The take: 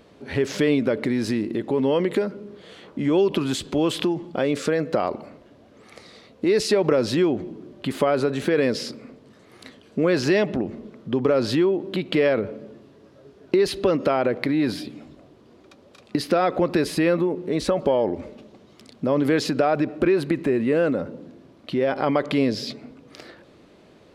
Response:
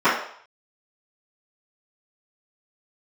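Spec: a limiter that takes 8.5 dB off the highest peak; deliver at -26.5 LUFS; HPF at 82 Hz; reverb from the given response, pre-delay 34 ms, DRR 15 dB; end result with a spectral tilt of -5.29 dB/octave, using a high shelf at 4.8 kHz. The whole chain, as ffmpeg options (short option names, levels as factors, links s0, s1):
-filter_complex "[0:a]highpass=82,highshelf=f=4800:g=-6.5,alimiter=limit=0.178:level=0:latency=1,asplit=2[s0][s1];[1:a]atrim=start_sample=2205,adelay=34[s2];[s1][s2]afir=irnorm=-1:irlink=0,volume=0.0126[s3];[s0][s3]amix=inputs=2:normalize=0,volume=0.891"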